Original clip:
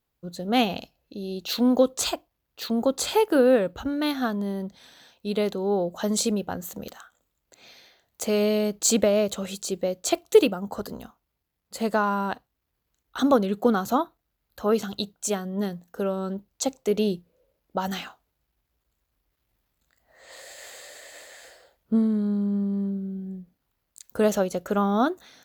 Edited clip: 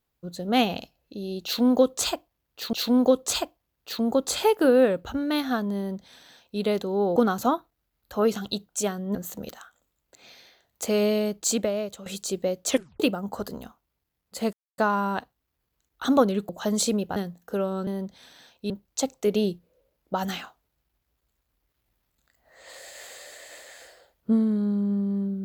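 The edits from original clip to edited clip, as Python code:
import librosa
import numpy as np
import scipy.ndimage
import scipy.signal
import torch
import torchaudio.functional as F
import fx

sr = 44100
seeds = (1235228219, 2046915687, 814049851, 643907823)

y = fx.edit(x, sr, fx.repeat(start_s=1.44, length_s=1.29, count=2),
    fx.duplicate(start_s=4.48, length_s=0.83, to_s=16.33),
    fx.swap(start_s=5.87, length_s=0.67, other_s=13.63, other_length_s=1.99),
    fx.fade_out_to(start_s=8.43, length_s=1.02, floor_db=-12.5),
    fx.tape_stop(start_s=10.07, length_s=0.32),
    fx.insert_silence(at_s=11.92, length_s=0.25), tone=tone)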